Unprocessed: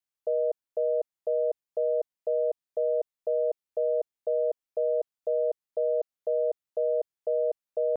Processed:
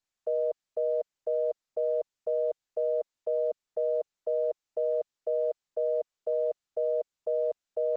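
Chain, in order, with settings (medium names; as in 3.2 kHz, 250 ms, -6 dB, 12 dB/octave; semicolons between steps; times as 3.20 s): high-pass 360 Hz 6 dB/octave; Opus 12 kbps 48 kHz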